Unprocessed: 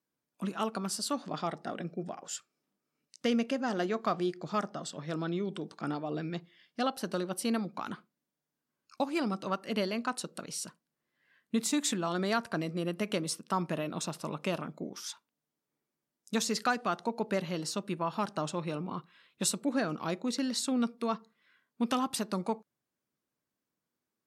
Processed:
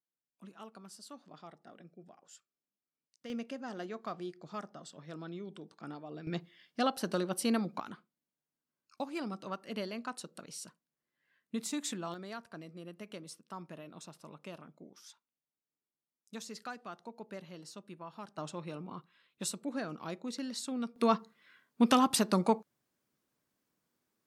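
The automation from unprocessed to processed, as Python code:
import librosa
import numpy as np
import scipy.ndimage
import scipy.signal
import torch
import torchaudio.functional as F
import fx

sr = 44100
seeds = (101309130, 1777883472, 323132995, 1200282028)

y = fx.gain(x, sr, db=fx.steps((0.0, -17.0), (3.3, -10.0), (6.27, 0.5), (7.8, -7.0), (12.14, -14.0), (18.38, -7.0), (20.96, 5.0)))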